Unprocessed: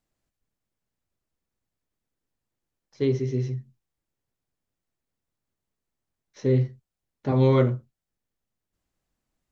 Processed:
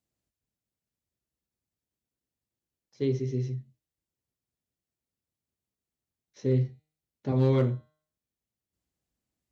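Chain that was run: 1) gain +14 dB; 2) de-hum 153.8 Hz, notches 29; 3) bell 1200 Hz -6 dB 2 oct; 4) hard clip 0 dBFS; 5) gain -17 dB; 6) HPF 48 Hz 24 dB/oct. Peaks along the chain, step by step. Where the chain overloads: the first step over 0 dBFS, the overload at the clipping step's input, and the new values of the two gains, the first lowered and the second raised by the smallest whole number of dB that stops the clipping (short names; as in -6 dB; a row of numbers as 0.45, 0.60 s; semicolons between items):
+5.0, +5.0, +3.5, 0.0, -17.0, -13.0 dBFS; step 1, 3.5 dB; step 1 +10 dB, step 5 -13 dB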